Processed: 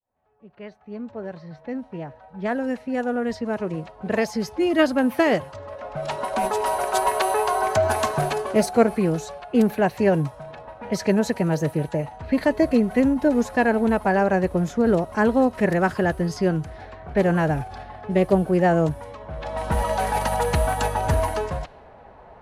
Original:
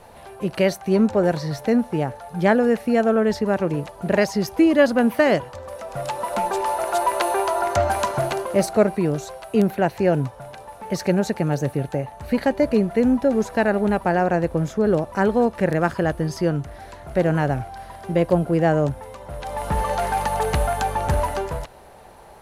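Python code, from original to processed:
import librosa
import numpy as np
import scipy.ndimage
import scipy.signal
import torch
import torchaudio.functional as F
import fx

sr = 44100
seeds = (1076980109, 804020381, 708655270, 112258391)

y = fx.fade_in_head(x, sr, length_s=6.45)
y = fx.env_lowpass(y, sr, base_hz=1800.0, full_db=-19.5)
y = fx.pitch_keep_formants(y, sr, semitones=1.5)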